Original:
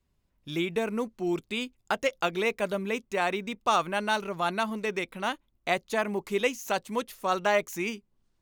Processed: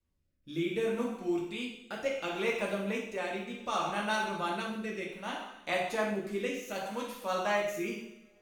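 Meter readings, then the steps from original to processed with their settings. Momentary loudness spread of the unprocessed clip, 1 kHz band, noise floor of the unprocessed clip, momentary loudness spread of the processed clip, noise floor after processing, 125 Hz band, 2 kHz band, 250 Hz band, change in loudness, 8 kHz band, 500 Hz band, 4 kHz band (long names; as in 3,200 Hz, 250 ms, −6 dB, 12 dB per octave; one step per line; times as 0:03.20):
7 LU, −6.0 dB, −74 dBFS, 7 LU, −72 dBFS, −3.5 dB, −4.5 dB, −2.5 dB, −4.5 dB, −5.5 dB, −4.0 dB, −5.0 dB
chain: coupled-rooms reverb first 0.83 s, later 3 s, from −27 dB, DRR −3 dB
rotating-speaker cabinet horn 0.65 Hz
level −7 dB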